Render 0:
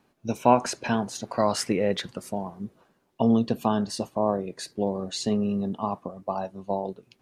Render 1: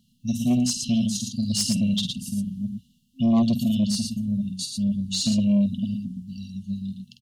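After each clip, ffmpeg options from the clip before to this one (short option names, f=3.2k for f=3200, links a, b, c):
-af "afftfilt=real='re*(1-between(b*sr/4096,260,2700))':imag='im*(1-between(b*sr/4096,260,2700))':win_size=4096:overlap=0.75,aecho=1:1:49.56|113.7:0.447|0.562,aeval=exprs='0.266*(cos(1*acos(clip(val(0)/0.266,-1,1)))-cos(1*PI/2))+0.0531*(cos(5*acos(clip(val(0)/0.266,-1,1)))-cos(5*PI/2))':c=same"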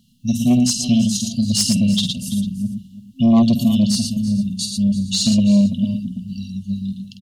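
-af "aecho=1:1:334:0.158,volume=6.5dB"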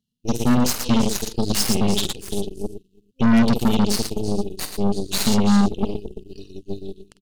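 -af "aeval=exprs='0.596*(cos(1*acos(clip(val(0)/0.596,-1,1)))-cos(1*PI/2))+0.075*(cos(7*acos(clip(val(0)/0.596,-1,1)))-cos(7*PI/2))+0.119*(cos(8*acos(clip(val(0)/0.596,-1,1)))-cos(8*PI/2))':c=same,volume=-4dB"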